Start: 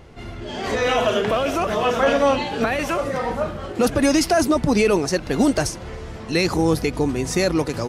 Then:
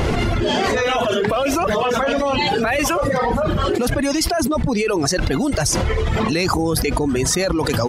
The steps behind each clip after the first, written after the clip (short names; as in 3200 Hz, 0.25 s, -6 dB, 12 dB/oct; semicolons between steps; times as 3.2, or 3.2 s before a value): reverb removal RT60 1.6 s; fast leveller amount 100%; gain -4 dB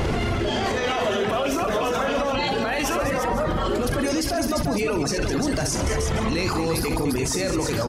on a send: tapped delay 41/63/140/208/346/501 ms -11/-9.5/-19.5/-11/-7/-18 dB; on the sum: limiter -15.5 dBFS, peak gain reduction 11.5 dB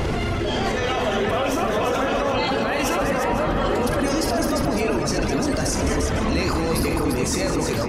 dark delay 0.497 s, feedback 66%, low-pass 2400 Hz, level -5 dB